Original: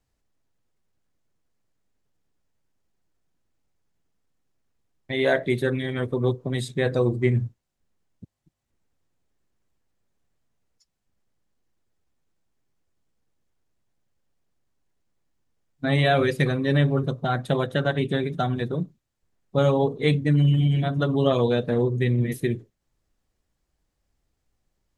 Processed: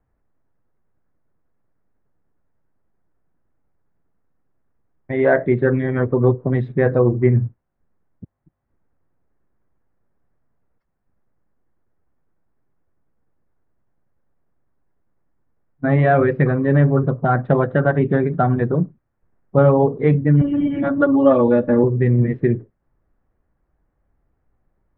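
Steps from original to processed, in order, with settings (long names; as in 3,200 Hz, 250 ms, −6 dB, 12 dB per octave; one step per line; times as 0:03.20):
low-pass filter 1,700 Hz 24 dB per octave
0:20.41–0:21.84: comb filter 3.5 ms, depth 98%
in parallel at −1 dB: speech leveller 0.5 s
on the sum: level +1 dB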